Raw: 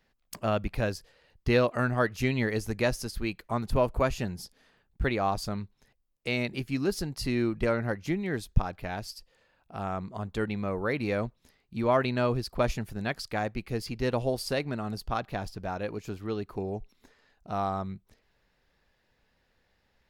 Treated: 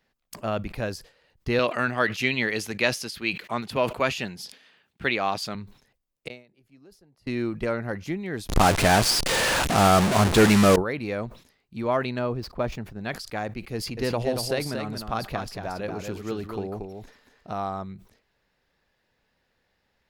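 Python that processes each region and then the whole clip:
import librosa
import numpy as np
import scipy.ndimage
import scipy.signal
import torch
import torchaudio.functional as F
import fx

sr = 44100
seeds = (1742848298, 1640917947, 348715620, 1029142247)

y = fx.chain(x, sr, fx.highpass(hz=140.0, slope=12),
    fx.peak_eq(hz=2900.0, db=11.0, octaves=1.7), at=(1.59, 5.55))
y = fx.chain(y, sr, fx.gate_flip(shuts_db=-34.0, range_db=-34),
    fx.peak_eq(hz=560.0, db=6.5, octaves=1.2),
    fx.band_squash(depth_pct=100), at=(6.28, 7.27))
y = fx.chain(y, sr, fx.delta_mod(bps=64000, step_db=-34.0),
    fx.leveller(passes=5), at=(8.49, 10.76))
y = fx.chain(y, sr, fx.median_filter(points=5),
    fx.high_shelf(hz=2200.0, db=-8.5), at=(12.19, 13.04))
y = fx.chain(y, sr, fx.transient(attack_db=4, sustain_db=8),
    fx.echo_single(ms=231, db=-6.0), at=(13.74, 17.53))
y = fx.low_shelf(y, sr, hz=73.0, db=-7.5)
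y = fx.sustainer(y, sr, db_per_s=140.0)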